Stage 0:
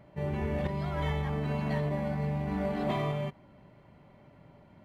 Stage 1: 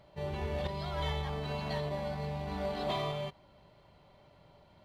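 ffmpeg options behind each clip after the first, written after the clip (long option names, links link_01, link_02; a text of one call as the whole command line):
ffmpeg -i in.wav -af "equalizer=frequency=125:width_type=o:width=1:gain=-5,equalizer=frequency=250:width_type=o:width=1:gain=-10,equalizer=frequency=2000:width_type=o:width=1:gain=-6,equalizer=frequency=4000:width_type=o:width=1:gain=10" out.wav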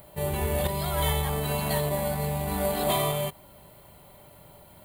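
ffmpeg -i in.wav -af "aexciter=amount=14.4:drive=7.4:freq=8200,volume=8dB" out.wav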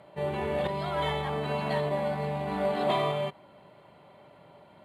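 ffmpeg -i in.wav -af "highpass=170,lowpass=2900" out.wav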